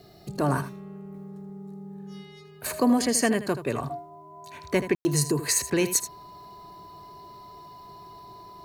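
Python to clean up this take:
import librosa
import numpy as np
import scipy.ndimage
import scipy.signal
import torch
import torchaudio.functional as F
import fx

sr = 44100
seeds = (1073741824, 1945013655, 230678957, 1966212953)

y = fx.fix_declip(x, sr, threshold_db=-12.0)
y = fx.notch(y, sr, hz=1000.0, q=30.0)
y = fx.fix_ambience(y, sr, seeds[0], print_start_s=2.14, print_end_s=2.64, start_s=4.95, end_s=5.05)
y = fx.fix_echo_inverse(y, sr, delay_ms=79, level_db=-12.0)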